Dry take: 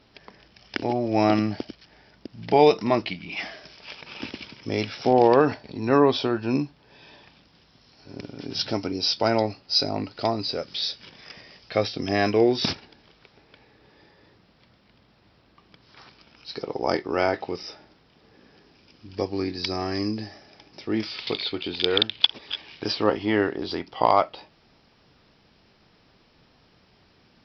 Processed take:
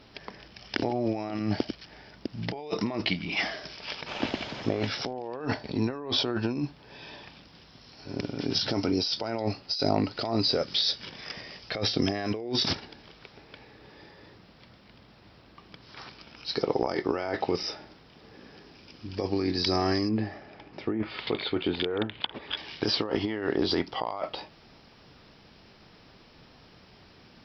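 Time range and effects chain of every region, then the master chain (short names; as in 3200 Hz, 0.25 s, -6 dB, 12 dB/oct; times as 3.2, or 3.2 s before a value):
4.08–4.87 delta modulation 32 kbps, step -37 dBFS + LPF 4200 Hz + bell 670 Hz +8.5 dB 0.59 oct
20.09–22.57 LPF 2400 Hz + treble ducked by the level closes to 1500 Hz, closed at -22 dBFS
whole clip: negative-ratio compressor -29 dBFS, ratio -1; dynamic EQ 2500 Hz, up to -5 dB, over -48 dBFS, Q 6.1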